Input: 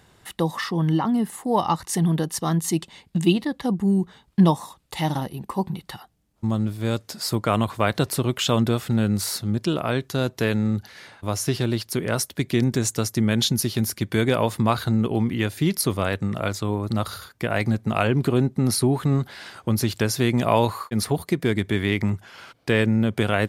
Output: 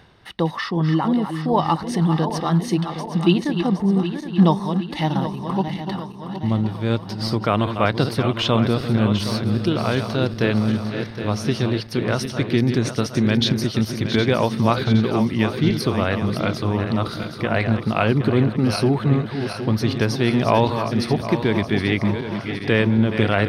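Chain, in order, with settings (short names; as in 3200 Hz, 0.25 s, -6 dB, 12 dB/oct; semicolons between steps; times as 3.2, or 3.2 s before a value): regenerating reverse delay 0.383 s, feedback 73%, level -8.5 dB; reverse; upward compressor, threshold -35 dBFS; reverse; polynomial smoothing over 15 samples; gain +2 dB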